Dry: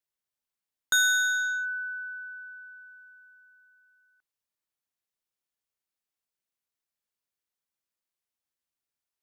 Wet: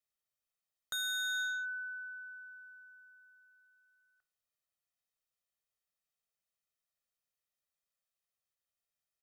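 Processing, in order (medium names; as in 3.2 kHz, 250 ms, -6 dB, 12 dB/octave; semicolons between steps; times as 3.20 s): comb 1.6 ms, depth 67%; de-hum 74.23 Hz, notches 20; peak limiter -25 dBFS, peak gain reduction 10.5 dB; trim -4 dB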